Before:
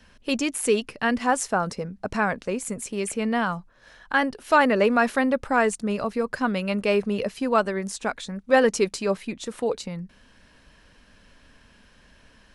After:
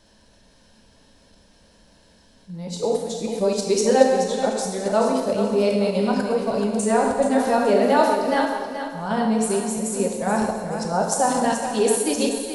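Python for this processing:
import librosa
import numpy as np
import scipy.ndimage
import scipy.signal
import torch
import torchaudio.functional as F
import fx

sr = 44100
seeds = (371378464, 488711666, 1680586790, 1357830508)

p1 = x[::-1].copy()
p2 = fx.band_shelf(p1, sr, hz=1800.0, db=-10.5, octaves=1.7)
p3 = fx.rev_gated(p2, sr, seeds[0], gate_ms=420, shape='falling', drr_db=-0.5)
p4 = fx.level_steps(p3, sr, step_db=12)
p5 = p3 + (p4 * 10.0 ** (-1.0 / 20.0))
p6 = fx.low_shelf(p5, sr, hz=240.0, db=-6.5)
p7 = p6 + fx.echo_feedback(p6, sr, ms=429, feedback_pct=33, wet_db=-9.0, dry=0)
y = p7 * 10.0 ** (-1.5 / 20.0)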